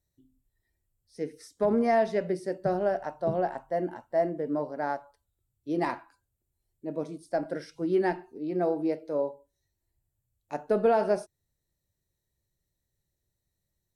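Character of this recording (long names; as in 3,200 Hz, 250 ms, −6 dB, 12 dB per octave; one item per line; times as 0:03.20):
background noise floor −83 dBFS
spectral slope −3.5 dB per octave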